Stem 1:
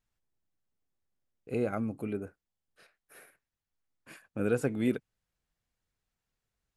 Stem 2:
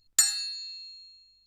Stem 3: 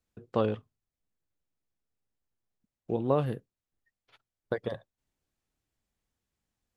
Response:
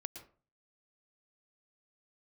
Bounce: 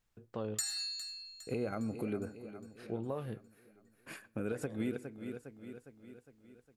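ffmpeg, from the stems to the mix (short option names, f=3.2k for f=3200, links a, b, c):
-filter_complex "[0:a]volume=2.5dB,asplit=3[a][b][c];[b]volume=-17.5dB[d];[c]volume=-17.5dB[e];[1:a]adelay=400,volume=-8dB,asplit=3[f][g][h];[g]volume=-3.5dB[i];[h]volume=-20.5dB[j];[2:a]flanger=delay=8.7:depth=2:regen=69:speed=0.36:shape=sinusoidal,volume=-3.5dB,asplit=2[k][l];[l]apad=whole_len=298521[m];[a][m]sidechaincompress=threshold=-46dB:ratio=8:attack=16:release=118[n];[n][k]amix=inputs=2:normalize=0,acompressor=threshold=-32dB:ratio=4,volume=0dB[o];[3:a]atrim=start_sample=2205[p];[d][i]amix=inputs=2:normalize=0[q];[q][p]afir=irnorm=-1:irlink=0[r];[e][j]amix=inputs=2:normalize=0,aecho=0:1:408|816|1224|1632|2040|2448|2856|3264:1|0.54|0.292|0.157|0.085|0.0459|0.0248|0.0134[s];[f][o][r][s]amix=inputs=4:normalize=0,alimiter=level_in=1.5dB:limit=-24dB:level=0:latency=1:release=214,volume=-1.5dB"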